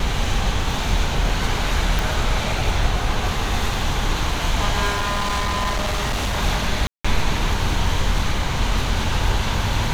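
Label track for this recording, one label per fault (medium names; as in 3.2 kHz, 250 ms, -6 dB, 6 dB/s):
1.990000	1.990000	pop
4.890000	6.370000	clipped -18.5 dBFS
6.870000	7.040000	dropout 175 ms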